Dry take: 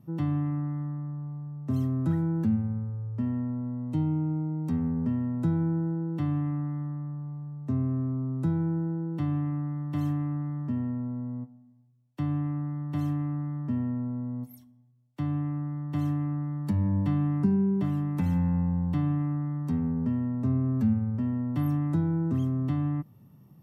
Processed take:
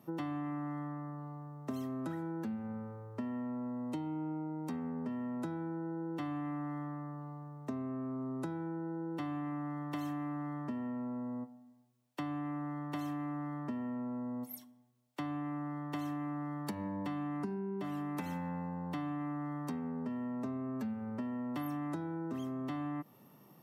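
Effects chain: high-pass 400 Hz 12 dB/octave; compression, threshold -43 dBFS, peak gain reduction 12 dB; trim +7 dB

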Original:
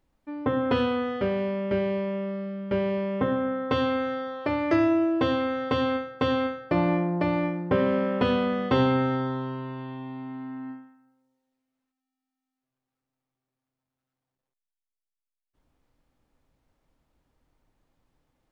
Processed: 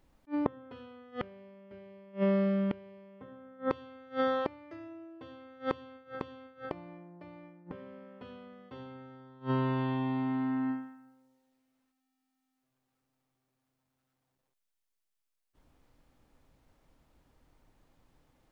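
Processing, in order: inverted gate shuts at -23 dBFS, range -30 dB; attacks held to a fixed rise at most 410 dB/s; trim +5 dB

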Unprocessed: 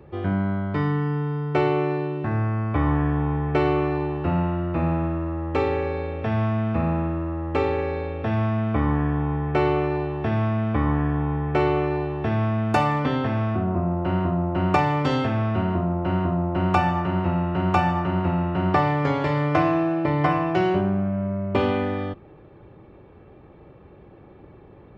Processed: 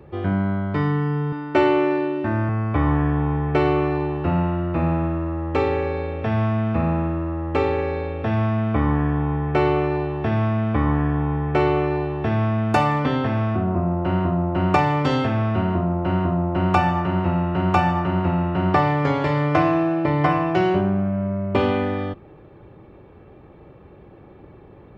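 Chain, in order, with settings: 1.32–2.49 s: comb 3.3 ms, depth 78%; trim +2 dB

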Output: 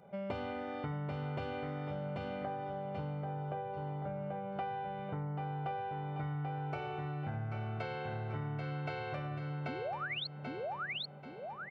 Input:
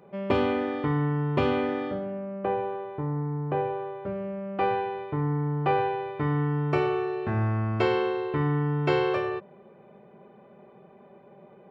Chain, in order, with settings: painted sound rise, 9.68–10.27 s, 230–4500 Hz -27 dBFS; comb 1.4 ms, depth 62%; feedback delay 786 ms, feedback 36%, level -5 dB; compression, threshold -31 dBFS, peak gain reduction 12.5 dB; trim -5.5 dB

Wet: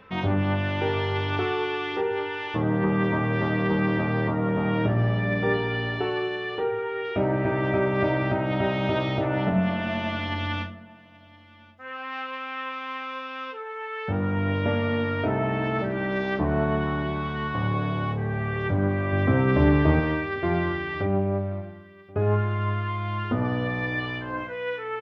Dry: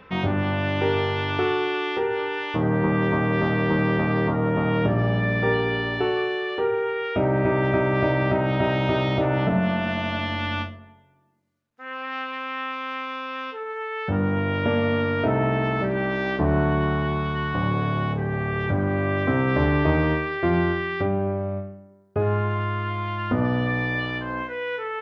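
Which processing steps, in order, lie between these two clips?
19.12–20.00 s: bass shelf 330 Hz +7 dB; delay 1081 ms -22.5 dB; flange 1.2 Hz, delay 8.8 ms, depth 1.8 ms, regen +59%; 6.63–7.05 s: treble shelf 4.1 kHz -5.5 dB; trim +1.5 dB

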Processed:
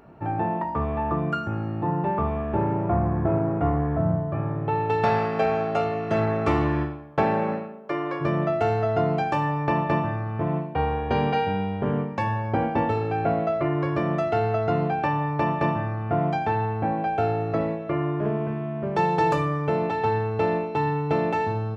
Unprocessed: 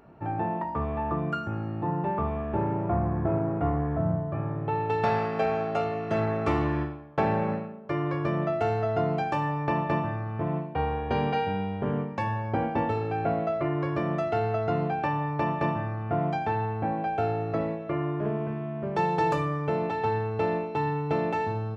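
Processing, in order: 7.23–8.20 s: high-pass 150 Hz -> 370 Hz 12 dB/octave; trim +3.5 dB

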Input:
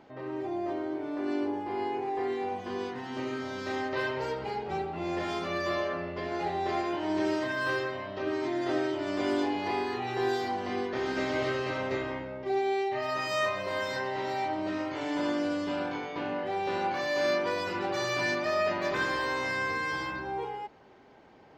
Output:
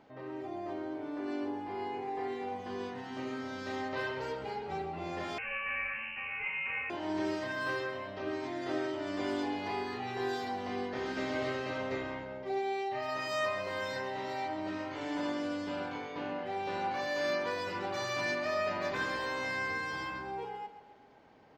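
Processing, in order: band-stop 360 Hz, Q 12; feedback delay 134 ms, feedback 52%, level -13 dB; 5.38–6.90 s: frequency inversion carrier 2.9 kHz; trim -4.5 dB

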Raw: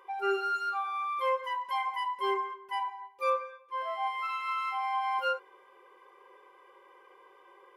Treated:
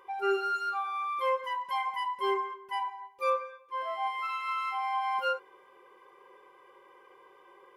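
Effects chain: tone controls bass +11 dB, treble +1 dB

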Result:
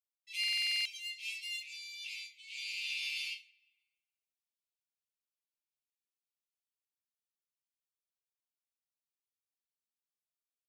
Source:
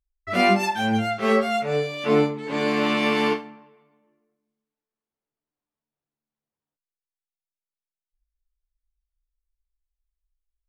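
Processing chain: steep high-pass 2.3 kHz 96 dB/octave; in parallel at -12 dB: saturation -30.5 dBFS, distortion -11 dB; on the sum: comb 5.3 ms, depth 78%; buffer glitch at 0.39 s, samples 2048, times 9; trim -8 dB

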